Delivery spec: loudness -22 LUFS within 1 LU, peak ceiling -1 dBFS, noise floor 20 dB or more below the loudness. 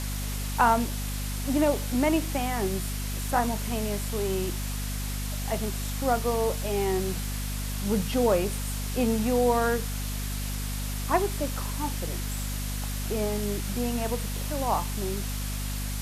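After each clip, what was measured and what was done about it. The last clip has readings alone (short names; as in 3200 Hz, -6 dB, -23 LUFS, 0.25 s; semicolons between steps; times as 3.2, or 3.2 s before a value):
hum 50 Hz; harmonics up to 250 Hz; hum level -29 dBFS; noise floor -31 dBFS; noise floor target -49 dBFS; loudness -28.5 LUFS; peak -9.0 dBFS; loudness target -22.0 LUFS
-> de-hum 50 Hz, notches 5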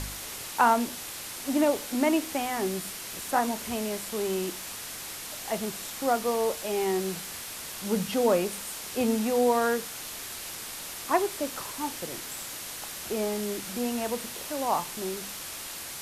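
hum none; noise floor -39 dBFS; noise floor target -50 dBFS
-> denoiser 11 dB, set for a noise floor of -39 dBFS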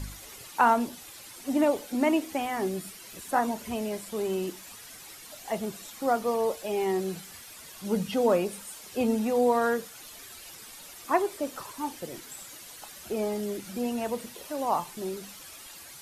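noise floor -47 dBFS; noise floor target -49 dBFS
-> denoiser 6 dB, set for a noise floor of -47 dBFS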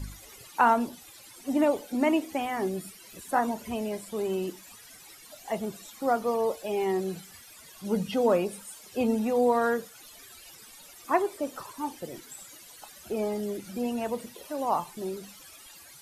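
noise floor -51 dBFS; loudness -29.0 LUFS; peak -9.5 dBFS; loudness target -22.0 LUFS
-> gain +7 dB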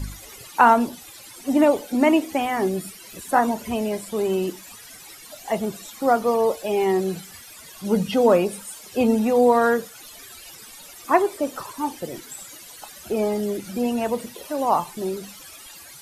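loudness -22.0 LUFS; peak -2.5 dBFS; noise floor -44 dBFS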